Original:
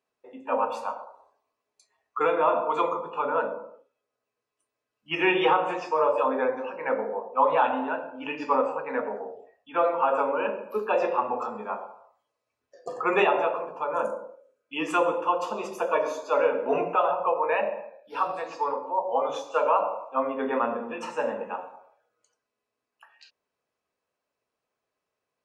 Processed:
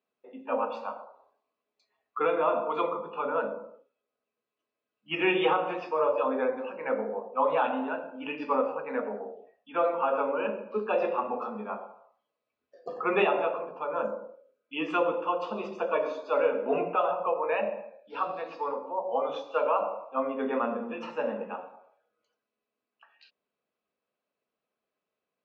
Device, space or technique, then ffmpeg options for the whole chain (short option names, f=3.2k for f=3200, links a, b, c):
guitar cabinet: -af "highpass=82,equalizer=f=110:t=q:w=4:g=-10,equalizer=f=210:t=q:w=4:g=6,equalizer=f=930:t=q:w=4:g=-5,equalizer=f=1.8k:t=q:w=4:g=-4,lowpass=f=4.2k:w=0.5412,lowpass=f=4.2k:w=1.3066,volume=-2dB"